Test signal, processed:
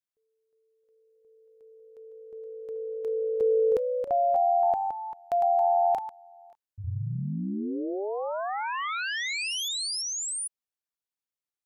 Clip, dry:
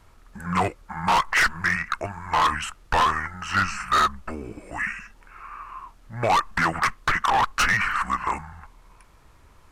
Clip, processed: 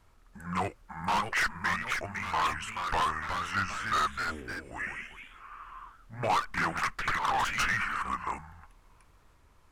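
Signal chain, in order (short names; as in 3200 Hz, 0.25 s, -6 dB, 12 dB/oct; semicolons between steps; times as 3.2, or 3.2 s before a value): echoes that change speed 0.685 s, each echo +2 st, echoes 2, each echo -6 dB; gain -8.5 dB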